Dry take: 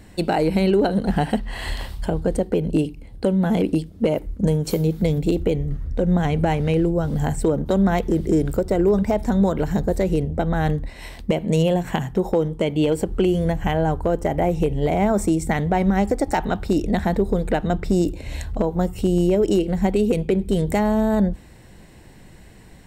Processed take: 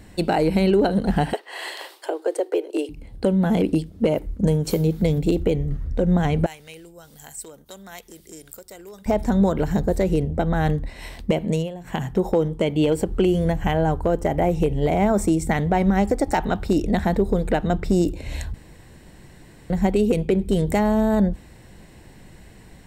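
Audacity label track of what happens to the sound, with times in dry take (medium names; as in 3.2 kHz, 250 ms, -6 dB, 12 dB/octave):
1.330000	2.890000	steep high-pass 320 Hz 72 dB/octave
6.460000	9.060000	pre-emphasis filter coefficient 0.97
11.450000	12.060000	dip -15.5 dB, fades 0.26 s
18.540000	19.700000	room tone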